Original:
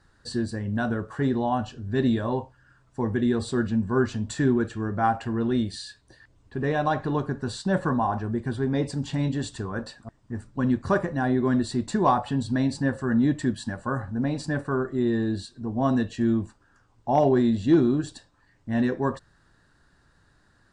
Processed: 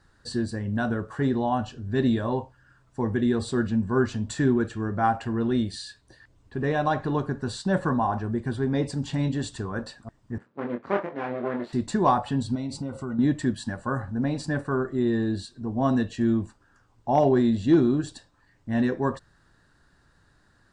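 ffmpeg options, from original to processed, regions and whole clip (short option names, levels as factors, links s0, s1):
-filter_complex "[0:a]asettb=1/sr,asplit=3[s0][s1][s2];[s0]atrim=end=10.384[s3];[s1]atrim=start=10.38:end=11.73,asetpts=PTS-STARTPTS,afade=t=in:d=0.004:c=qsin,afade=t=out:st=1.346:d=0.004:c=qsin,aeval=exprs='max(val(0),0)':c=same,highpass=280,lowpass=2300,asplit=2[s4][s5];[s5]adelay=25,volume=0.596[s6];[s4][s6]amix=inputs=2:normalize=0,atrim=end_sample=59535[s7];[s2]atrim=start=11.726[s8];[s3][s7]acrossfade=d=0.004:c1=hsin:c2=qsin[s9];[s9][s8]acrossfade=d=0.004:c1=qsin:c2=hsin,asettb=1/sr,asplit=3[s10][s11][s12];[s10]atrim=end=12.554[s13];[s11]atrim=start=12.55:end=13.19,asetpts=PTS-STARTPTS,afade=t=in:d=0.004:c=qsin,afade=t=out:st=0.636:d=0.004:c=qsin,acompressor=threshold=0.0398:ratio=4:attack=3.2:release=140:knee=1:detection=peak,asuperstop=centerf=1700:order=12:qfactor=4.6[s14];[s12]atrim=start=13.186[s15];[s13][s14]acrossfade=d=0.004:c1=hsin:c2=qsin[s16];[s16][s15]acrossfade=d=0.004:c1=qsin:c2=hsin"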